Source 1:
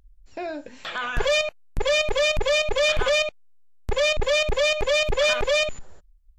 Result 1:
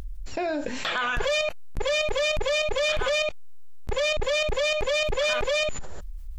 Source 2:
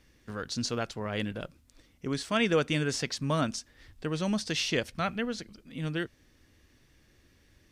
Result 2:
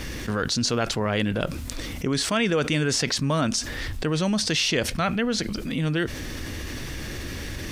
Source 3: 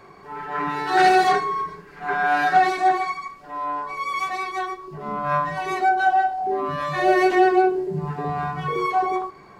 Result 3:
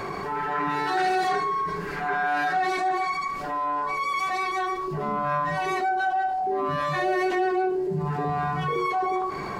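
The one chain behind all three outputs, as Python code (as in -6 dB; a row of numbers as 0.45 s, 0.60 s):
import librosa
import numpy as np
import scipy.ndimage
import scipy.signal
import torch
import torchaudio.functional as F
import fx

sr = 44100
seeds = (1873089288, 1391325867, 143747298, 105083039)

y = fx.env_flatten(x, sr, amount_pct=70)
y = y * 10.0 ** (-26 / 20.0) / np.sqrt(np.mean(np.square(y)))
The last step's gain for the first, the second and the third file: -5.0 dB, +1.0 dB, -10.0 dB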